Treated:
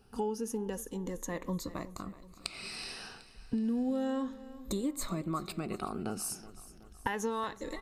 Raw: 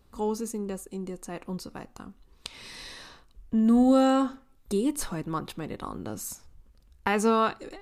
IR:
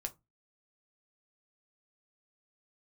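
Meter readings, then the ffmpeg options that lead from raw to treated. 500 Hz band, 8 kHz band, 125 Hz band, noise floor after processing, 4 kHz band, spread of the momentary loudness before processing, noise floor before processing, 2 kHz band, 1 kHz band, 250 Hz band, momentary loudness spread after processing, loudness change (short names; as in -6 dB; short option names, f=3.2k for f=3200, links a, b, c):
-8.5 dB, -2.5 dB, -3.5 dB, -56 dBFS, -3.5 dB, 21 LU, -60 dBFS, -6.0 dB, -9.0 dB, -9.0 dB, 13 LU, -9.5 dB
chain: -af "afftfilt=real='re*pow(10,12/40*sin(2*PI*(1.1*log(max(b,1)*sr/1024/100)/log(2)-(0.32)*(pts-256)/sr)))':imag='im*pow(10,12/40*sin(2*PI*(1.1*log(max(b,1)*sr/1024/100)/log(2)-(0.32)*(pts-256)/sr)))':win_size=1024:overlap=0.75,acompressor=threshold=-31dB:ratio=6,aecho=1:1:374|748|1122|1496|1870:0.141|0.0735|0.0382|0.0199|0.0103"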